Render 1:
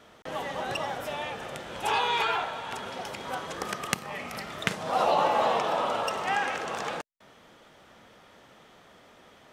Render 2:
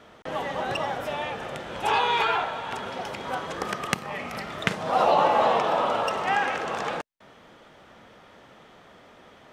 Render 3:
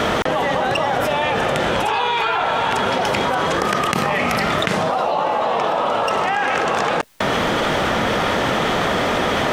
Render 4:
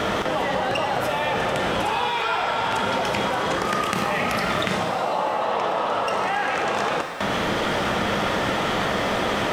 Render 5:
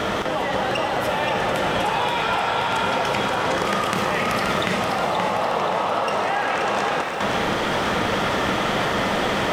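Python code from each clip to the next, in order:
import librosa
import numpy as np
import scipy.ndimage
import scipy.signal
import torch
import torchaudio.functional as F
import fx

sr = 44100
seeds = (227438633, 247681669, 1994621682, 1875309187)

y1 = fx.high_shelf(x, sr, hz=4900.0, db=-8.5)
y1 = y1 * librosa.db_to_amplitude(4.0)
y2 = fx.env_flatten(y1, sr, amount_pct=100)
y2 = y2 * librosa.db_to_amplitude(-1.0)
y3 = fx.rev_shimmer(y2, sr, seeds[0], rt60_s=1.5, semitones=7, shimmer_db=-8, drr_db=5.5)
y3 = y3 * librosa.db_to_amplitude(-5.5)
y4 = fx.echo_feedback(y3, sr, ms=527, feedback_pct=54, wet_db=-5.5)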